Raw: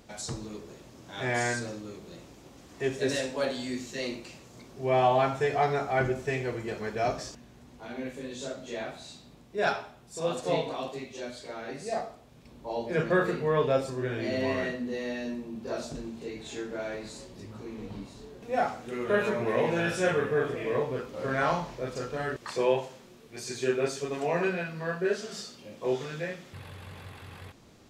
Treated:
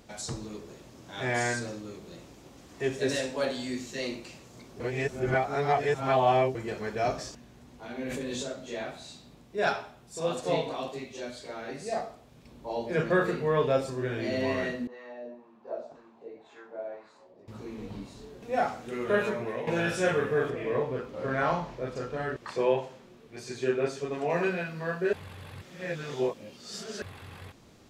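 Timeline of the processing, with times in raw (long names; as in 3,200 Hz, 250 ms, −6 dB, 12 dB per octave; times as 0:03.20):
0:04.80–0:06.55: reverse
0:08.00–0:08.43: envelope flattener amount 100%
0:14.87–0:17.48: LFO wah 1.9 Hz 570–1,200 Hz, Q 2.3
0:19.18–0:19.67: fade out, to −12 dB
0:20.50–0:24.30: high-shelf EQ 4,400 Hz −10 dB
0:25.13–0:27.02: reverse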